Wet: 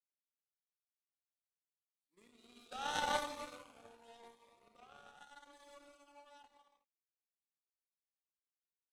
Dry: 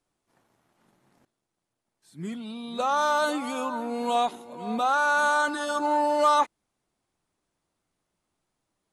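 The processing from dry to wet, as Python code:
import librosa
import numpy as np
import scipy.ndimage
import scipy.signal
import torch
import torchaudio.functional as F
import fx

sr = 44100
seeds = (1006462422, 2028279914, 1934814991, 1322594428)

p1 = fx.doppler_pass(x, sr, speed_mps=10, closest_m=3.7, pass_at_s=2.91)
p2 = scipy.signal.sosfilt(scipy.signal.butter(4, 320.0, 'highpass', fs=sr, output='sos'), p1)
p3 = fx.over_compress(p2, sr, threshold_db=-45.0, ratio=-0.5)
p4 = p2 + (p3 * librosa.db_to_amplitude(-3.0))
p5 = fx.rev_gated(p4, sr, seeds[0], gate_ms=430, shape='flat', drr_db=-0.5)
p6 = fx.power_curve(p5, sr, exponent=2.0)
p7 = fx.notch_cascade(p6, sr, direction='rising', hz=0.86)
y = p7 * librosa.db_to_amplitude(-5.0)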